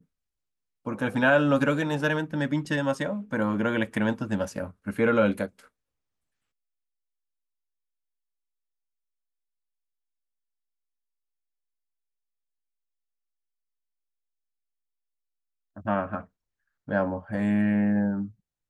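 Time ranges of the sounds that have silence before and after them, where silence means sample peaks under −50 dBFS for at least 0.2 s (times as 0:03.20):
0:00.85–0:05.67
0:15.76–0:16.26
0:16.87–0:18.32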